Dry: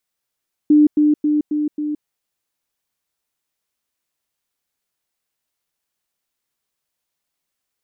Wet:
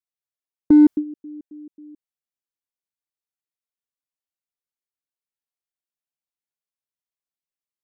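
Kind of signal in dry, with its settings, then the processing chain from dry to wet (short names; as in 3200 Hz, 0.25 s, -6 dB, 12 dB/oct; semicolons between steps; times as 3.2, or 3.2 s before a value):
level ladder 299 Hz -7.5 dBFS, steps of -3 dB, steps 5, 0.17 s 0.10 s
gate with hold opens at -10 dBFS; in parallel at -10 dB: hard clip -17.5 dBFS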